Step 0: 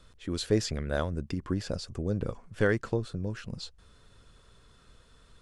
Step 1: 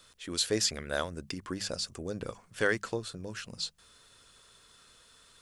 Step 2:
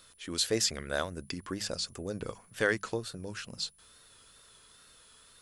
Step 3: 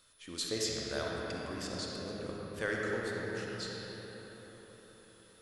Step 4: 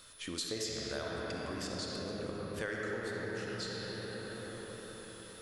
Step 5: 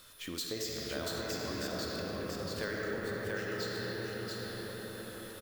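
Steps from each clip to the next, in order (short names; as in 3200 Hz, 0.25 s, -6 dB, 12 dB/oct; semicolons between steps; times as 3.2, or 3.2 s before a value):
tilt +3 dB/oct; notches 50/100/150/200 Hz
wow and flutter 61 cents; whine 10000 Hz -62 dBFS
reverb RT60 4.9 s, pre-delay 15 ms, DRR -3.5 dB; gain -8 dB
compressor 3:1, threshold -49 dBFS, peak gain reduction 14 dB; gain +9.5 dB
careless resampling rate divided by 2×, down filtered, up hold; on a send: echo 0.685 s -3 dB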